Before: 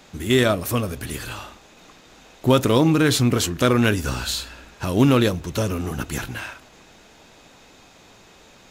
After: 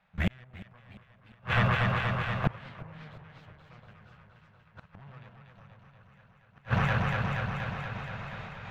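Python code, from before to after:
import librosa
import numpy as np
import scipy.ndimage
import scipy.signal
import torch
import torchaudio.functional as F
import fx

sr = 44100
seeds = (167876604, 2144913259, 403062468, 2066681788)

y = fx.high_shelf(x, sr, hz=7100.0, db=-11.5)
y = fx.notch(y, sr, hz=390.0, q=13.0)
y = fx.cheby_harmonics(y, sr, harmonics=(2, 4, 7, 8), levels_db=(-7, -11, -31, -21), full_scale_db=-5.0)
y = fx.vibrato(y, sr, rate_hz=7.6, depth_cents=17.0)
y = fx.step_gate(y, sr, bpm=170, pattern='..xxx.x.xxxx', floor_db=-24.0, edge_ms=4.5)
y = fx.curve_eq(y, sr, hz=(110.0, 190.0, 270.0, 660.0, 1700.0, 2600.0, 9600.0, 15000.0), db=(0, 5, -21, 0, 4, 0, -26, -16))
y = fx.echo_alternate(y, sr, ms=119, hz=960.0, feedback_pct=86, wet_db=-2)
y = fx.gate_flip(y, sr, shuts_db=-19.0, range_db=-40)
y = fx.echo_warbled(y, sr, ms=355, feedback_pct=53, rate_hz=2.8, cents=214, wet_db=-18)
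y = F.gain(torch.from_numpy(y), 6.5).numpy()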